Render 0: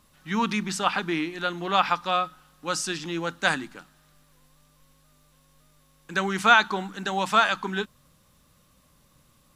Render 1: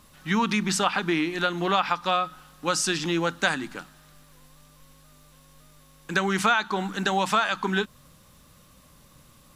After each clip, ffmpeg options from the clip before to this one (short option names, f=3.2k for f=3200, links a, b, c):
-af "acompressor=threshold=-27dB:ratio=4,volume=6.5dB"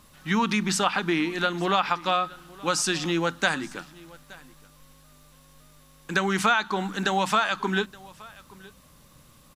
-af "aecho=1:1:872:0.075"